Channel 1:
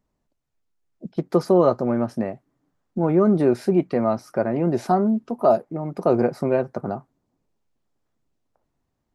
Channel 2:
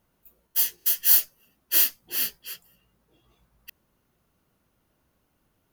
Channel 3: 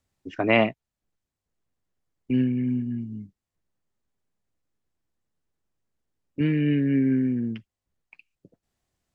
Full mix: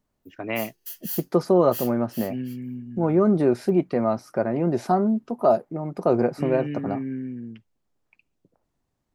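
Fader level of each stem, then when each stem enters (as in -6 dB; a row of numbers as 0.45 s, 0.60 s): -1.5 dB, -14.5 dB, -8.5 dB; 0.00 s, 0.00 s, 0.00 s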